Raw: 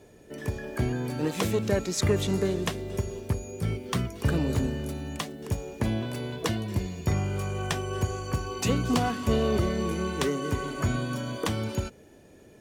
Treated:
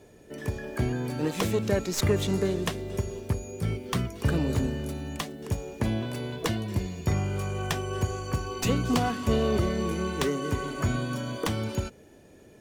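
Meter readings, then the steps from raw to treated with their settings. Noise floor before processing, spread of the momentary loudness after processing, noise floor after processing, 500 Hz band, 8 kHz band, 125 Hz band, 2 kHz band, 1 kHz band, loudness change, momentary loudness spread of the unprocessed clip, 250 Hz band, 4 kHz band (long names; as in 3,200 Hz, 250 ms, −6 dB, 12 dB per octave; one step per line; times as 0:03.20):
−53 dBFS, 8 LU, −53 dBFS, 0.0 dB, −0.5 dB, 0.0 dB, 0.0 dB, 0.0 dB, 0.0 dB, 8 LU, 0.0 dB, 0.0 dB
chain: stylus tracing distortion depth 0.042 ms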